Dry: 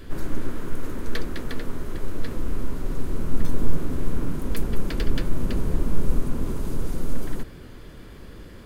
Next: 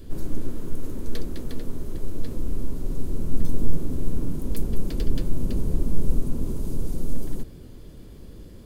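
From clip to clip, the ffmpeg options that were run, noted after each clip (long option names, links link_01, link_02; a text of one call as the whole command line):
ffmpeg -i in.wav -af "equalizer=frequency=1600:width_type=o:width=2.1:gain=-13" out.wav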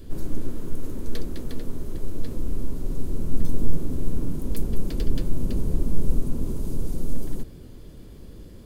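ffmpeg -i in.wav -af anull out.wav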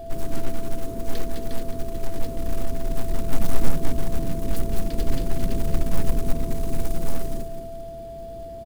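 ffmpeg -i in.wav -af "aecho=1:1:217|434|651|868|1085:0.355|0.167|0.0784|0.0368|0.0173,acrusher=bits=6:mode=log:mix=0:aa=0.000001,aeval=exprs='val(0)+0.0178*sin(2*PI*670*n/s)':channel_layout=same" out.wav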